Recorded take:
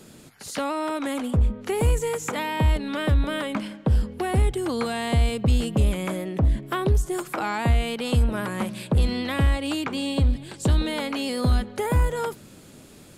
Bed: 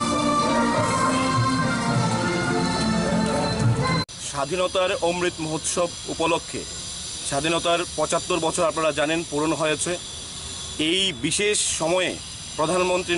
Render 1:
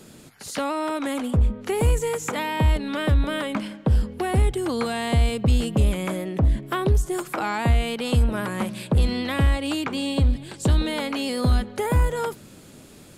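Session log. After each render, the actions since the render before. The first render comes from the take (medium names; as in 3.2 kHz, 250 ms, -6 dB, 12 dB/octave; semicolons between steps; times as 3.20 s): trim +1 dB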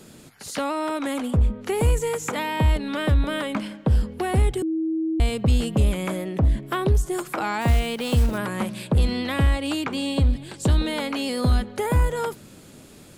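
4.62–5.20 s: bleep 321 Hz -21.5 dBFS; 7.61–8.39 s: block-companded coder 5-bit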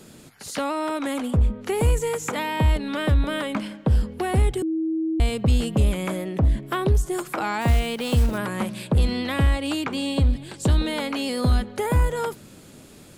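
no audible change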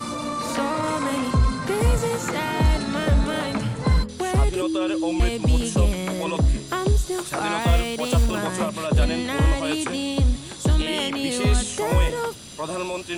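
add bed -7 dB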